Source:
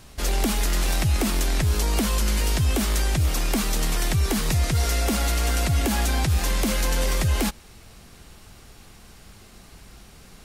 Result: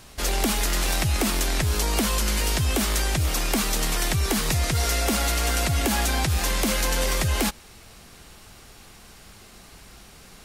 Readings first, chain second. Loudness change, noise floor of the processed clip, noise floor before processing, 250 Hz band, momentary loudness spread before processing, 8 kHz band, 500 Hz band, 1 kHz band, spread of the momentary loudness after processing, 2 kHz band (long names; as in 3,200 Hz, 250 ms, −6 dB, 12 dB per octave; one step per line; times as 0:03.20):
0.0 dB, −48 dBFS, −48 dBFS, −1.0 dB, 2 LU, +2.5 dB, +1.0 dB, +2.0 dB, 1 LU, +2.5 dB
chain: low-shelf EQ 300 Hz −5.5 dB
level +2.5 dB